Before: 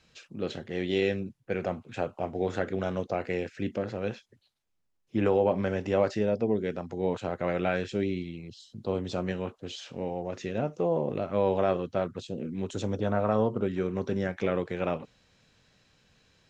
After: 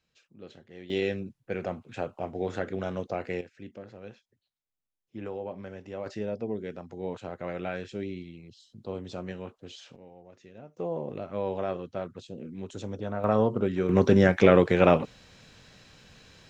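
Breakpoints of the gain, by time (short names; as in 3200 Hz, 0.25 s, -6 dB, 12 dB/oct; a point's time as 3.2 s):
-14 dB
from 0.9 s -2 dB
from 3.41 s -12.5 dB
from 6.06 s -6 dB
from 9.96 s -17.5 dB
from 10.77 s -5.5 dB
from 13.24 s +2 dB
from 13.89 s +10.5 dB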